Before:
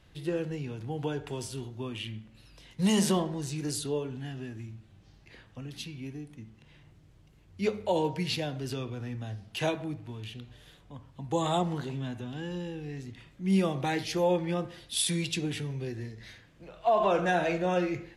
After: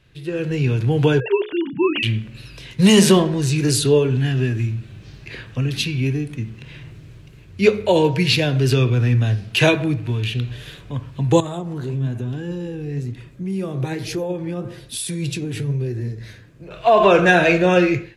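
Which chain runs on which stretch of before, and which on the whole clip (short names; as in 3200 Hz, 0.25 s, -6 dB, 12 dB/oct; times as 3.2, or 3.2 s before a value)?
1.2–2.03 sine-wave speech + notches 60/120/180/240/300/360/420/480 Hz
11.4–16.71 bell 2800 Hz -10.5 dB 2.1 oct + compressor 3:1, threshold -36 dBFS + flange 1.1 Hz, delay 1.9 ms, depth 9.5 ms, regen +72%
whole clip: thirty-one-band EQ 125 Hz +10 dB, 400 Hz +5 dB, 800 Hz -6 dB, 1600 Hz +4 dB, 2500 Hz +7 dB, 4000 Hz +3 dB; AGC gain up to 15 dB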